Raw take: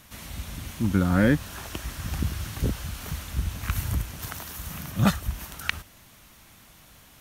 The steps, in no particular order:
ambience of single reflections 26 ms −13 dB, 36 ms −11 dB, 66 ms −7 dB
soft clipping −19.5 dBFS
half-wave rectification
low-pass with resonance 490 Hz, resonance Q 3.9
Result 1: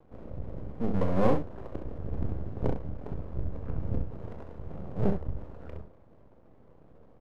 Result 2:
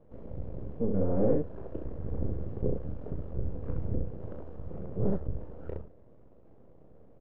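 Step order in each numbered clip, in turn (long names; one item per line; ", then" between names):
soft clipping, then low-pass with resonance, then half-wave rectification, then ambience of single reflections
half-wave rectification, then ambience of single reflections, then soft clipping, then low-pass with resonance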